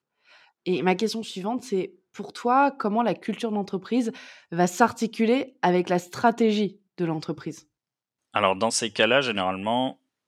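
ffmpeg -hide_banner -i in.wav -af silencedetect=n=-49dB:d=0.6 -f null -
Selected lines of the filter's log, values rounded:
silence_start: 7.62
silence_end: 8.34 | silence_duration: 0.72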